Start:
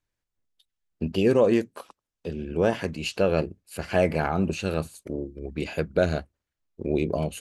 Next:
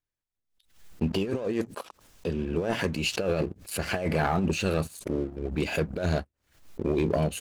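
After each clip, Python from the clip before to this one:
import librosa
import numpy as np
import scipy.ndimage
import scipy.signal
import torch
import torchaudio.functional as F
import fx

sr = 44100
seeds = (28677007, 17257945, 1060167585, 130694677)

y = fx.over_compress(x, sr, threshold_db=-24.0, ratio=-0.5)
y = fx.leveller(y, sr, passes=2)
y = fx.pre_swell(y, sr, db_per_s=120.0)
y = y * librosa.db_to_amplitude(-7.0)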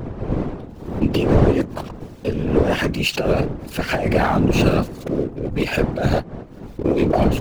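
y = scipy.signal.medfilt(x, 5)
y = fx.dmg_wind(y, sr, seeds[0], corner_hz=300.0, level_db=-32.0)
y = fx.whisperise(y, sr, seeds[1])
y = y * librosa.db_to_amplitude(8.0)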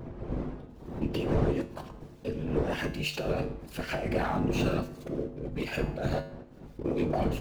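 y = fx.comb_fb(x, sr, f0_hz=50.0, decay_s=0.54, harmonics='odd', damping=0.0, mix_pct=70)
y = y * librosa.db_to_amplitude(-4.0)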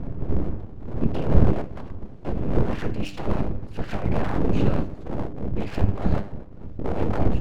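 y = scipy.signal.sosfilt(scipy.signal.butter(2, 11000.0, 'lowpass', fs=sr, output='sos'), x)
y = fx.riaa(y, sr, side='playback')
y = np.abs(y)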